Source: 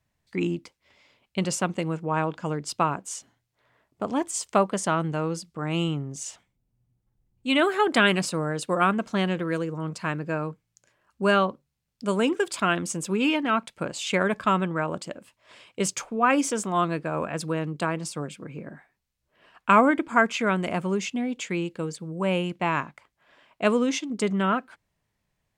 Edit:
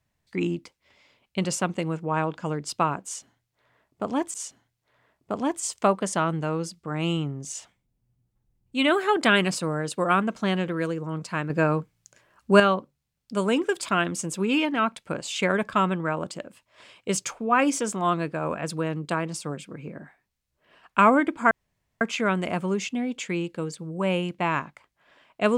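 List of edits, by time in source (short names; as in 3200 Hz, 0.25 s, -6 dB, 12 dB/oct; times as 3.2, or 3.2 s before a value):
3.05–4.34 loop, 2 plays
10.21–11.31 gain +6.5 dB
20.22 insert room tone 0.50 s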